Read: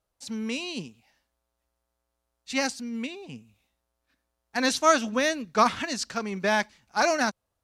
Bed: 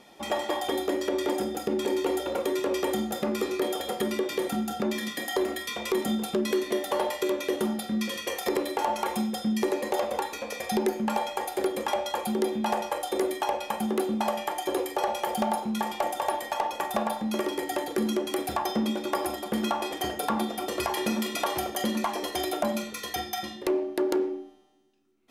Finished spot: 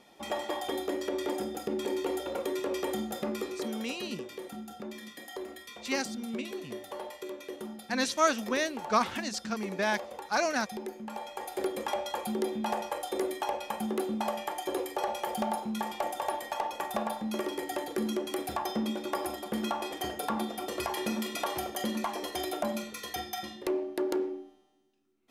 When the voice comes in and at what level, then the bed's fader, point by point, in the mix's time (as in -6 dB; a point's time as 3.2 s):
3.35 s, -5.0 dB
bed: 3.29 s -5 dB
3.98 s -13 dB
11.09 s -13 dB
11.62 s -4.5 dB